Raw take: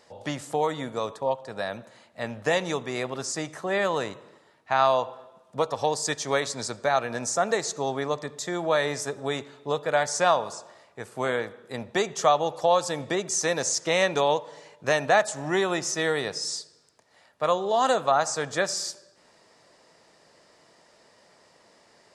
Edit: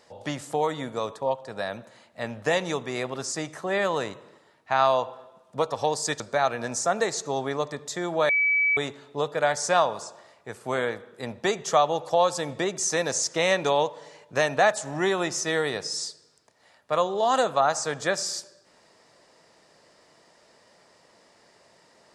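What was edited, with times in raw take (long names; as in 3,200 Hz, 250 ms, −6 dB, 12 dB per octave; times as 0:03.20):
0:06.20–0:06.71: remove
0:08.80–0:09.28: beep over 2,290 Hz −19 dBFS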